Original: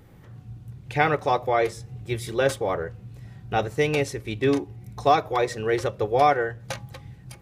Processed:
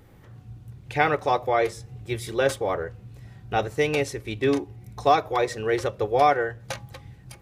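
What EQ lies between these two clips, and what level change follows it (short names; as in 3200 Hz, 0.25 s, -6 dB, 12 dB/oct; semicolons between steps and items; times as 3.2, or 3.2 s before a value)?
bell 160 Hz -4 dB 0.94 oct; 0.0 dB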